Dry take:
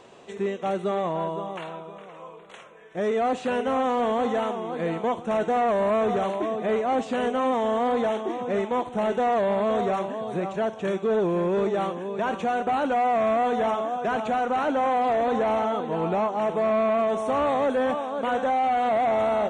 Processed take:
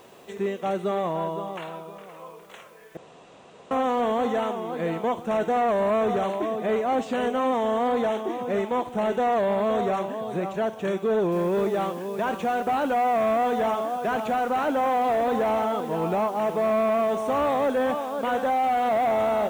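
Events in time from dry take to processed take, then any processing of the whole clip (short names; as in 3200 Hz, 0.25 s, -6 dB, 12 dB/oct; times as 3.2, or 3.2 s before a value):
2.97–3.71 room tone
11.32 noise floor step -63 dB -54 dB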